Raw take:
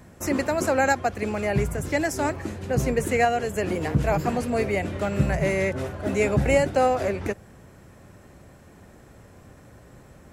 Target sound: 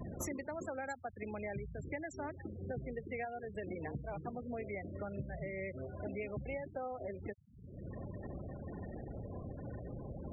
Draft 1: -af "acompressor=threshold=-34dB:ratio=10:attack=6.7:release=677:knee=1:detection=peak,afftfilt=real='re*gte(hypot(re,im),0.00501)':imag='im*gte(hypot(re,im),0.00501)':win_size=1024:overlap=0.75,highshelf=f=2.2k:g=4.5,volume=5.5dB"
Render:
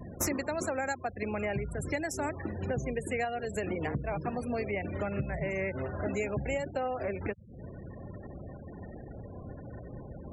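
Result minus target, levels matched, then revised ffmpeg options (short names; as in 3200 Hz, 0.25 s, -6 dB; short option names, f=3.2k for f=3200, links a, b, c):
compressor: peak gain reduction -8.5 dB
-af "acompressor=threshold=-43.5dB:ratio=10:attack=6.7:release=677:knee=1:detection=peak,afftfilt=real='re*gte(hypot(re,im),0.00501)':imag='im*gte(hypot(re,im),0.00501)':win_size=1024:overlap=0.75,highshelf=f=2.2k:g=4.5,volume=5.5dB"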